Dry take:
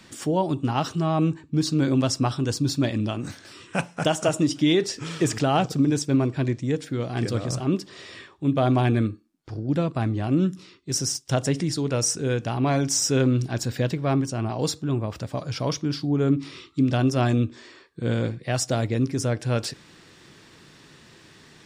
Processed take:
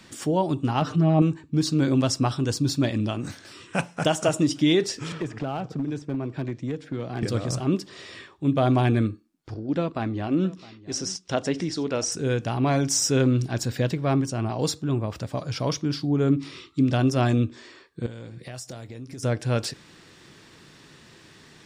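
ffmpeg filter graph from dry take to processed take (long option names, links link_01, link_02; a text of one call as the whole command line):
ffmpeg -i in.wav -filter_complex "[0:a]asettb=1/sr,asplit=3[link_01][link_02][link_03];[link_01]atrim=end=0.814[link_04];[link_02]atrim=start=0.81:end=1.22,asetpts=PTS-STARTPTS,afade=type=in:duration=0.004:curve=qsin,afade=type=out:start_time=0.406:duration=0.004:curve=qsin,lowpass=frequency=1500:poles=1,acompressor=mode=upward:threshold=-28dB:ratio=2.5:attack=3.2:release=140:knee=2.83:detection=peak,aecho=1:1:6.7:0.93,atrim=end_sample=18081[link_05];[link_03]atrim=start=1.216[link_06];[link_04][link_05]acrossfade=duration=0.004:curve1=hsin:curve2=qsin[link_07];[link_07][link_06]acrossfade=duration=0.004:curve1=qsin:curve2=hsin,asettb=1/sr,asplit=3[link_08][link_09][link_10];[link_08]atrim=end=5.124[link_11];[link_09]atrim=start=5.12:end=7.23,asetpts=PTS-STARTPTS,afade=type=in:duration=0.004:curve=qsin,afade=type=out:start_time=2.106:duration=0.004:curve=qsin,acrossover=split=130|2500[link_12][link_13][link_14];[link_12]acompressor=threshold=-42dB:ratio=4[link_15];[link_13]acompressor=threshold=-28dB:ratio=4[link_16];[link_14]acompressor=threshold=-48dB:ratio=4[link_17];[link_15][link_16][link_17]amix=inputs=3:normalize=0,aemphasis=mode=reproduction:type=50fm,asoftclip=type=hard:threshold=-22dB[link_18];[link_10]atrim=start=7.226[link_19];[link_11][link_18]acrossfade=duration=0.004:curve1=hsin:curve2=qsin[link_20];[link_20][link_19]acrossfade=duration=0.004:curve1=qsin:curve2=hsin,asettb=1/sr,asplit=3[link_21][link_22][link_23];[link_21]atrim=end=9.544[link_24];[link_22]atrim=start=9.54:end=12.12,asetpts=PTS-STARTPTS,afade=type=in:duration=0.004:curve=qsin,afade=type=out:start_time=2.576:duration=0.004:curve=qsin,lowpass=5300,equalizer=frequency=130:width_type=o:width=0.52:gain=-12,aecho=1:1:661:0.1,atrim=end_sample=113778[link_25];[link_23]atrim=start=12.116[link_26];[link_24][link_25]acrossfade=duration=0.004:curve1=hsin:curve2=qsin[link_27];[link_27][link_26]acrossfade=duration=0.004:curve1=qsin:curve2=hsin,asettb=1/sr,asplit=3[link_28][link_29][link_30];[link_28]atrim=end=18.064[link_31];[link_29]atrim=start=18.06:end=19.23,asetpts=PTS-STARTPTS,afade=type=in:duration=0.004:curve=qsin,afade=type=out:start_time=1.166:duration=0.004:curve=qsin,highshelf=frequency=5900:gain=8.5,acompressor=threshold=-34dB:ratio=20:attack=3.2:release=140:knee=1:detection=peak,asplit=2[link_32][link_33];[link_33]adelay=24,volume=-13dB[link_34];[link_32][link_34]amix=inputs=2:normalize=0,atrim=end_sample=51597[link_35];[link_30]atrim=start=19.226[link_36];[link_31][link_35]acrossfade=duration=0.004:curve1=hsin:curve2=qsin[link_37];[link_37][link_36]acrossfade=duration=0.004:curve1=qsin:curve2=hsin" out.wav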